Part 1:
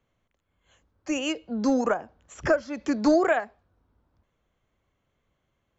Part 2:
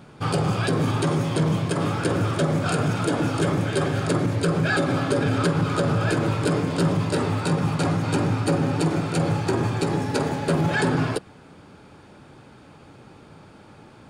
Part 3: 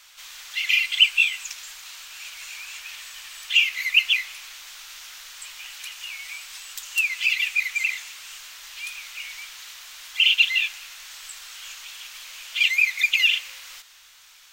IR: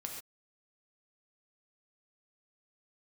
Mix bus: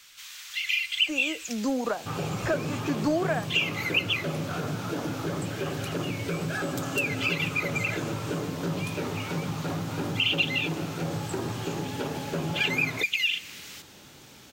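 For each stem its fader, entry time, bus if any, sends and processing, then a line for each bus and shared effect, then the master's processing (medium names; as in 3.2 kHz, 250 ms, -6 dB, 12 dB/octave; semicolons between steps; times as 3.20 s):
0.0 dB, 0.00 s, no send, none
-5.5 dB, 1.85 s, no send, low-pass 2.7 kHz
-1.5 dB, 0.00 s, no send, high-pass 1.2 kHz 12 dB/octave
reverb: none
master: peaking EQ 110 Hz -3 dB 0.38 oct; compression 1.5:1, threshold -32 dBFS, peak gain reduction 7.5 dB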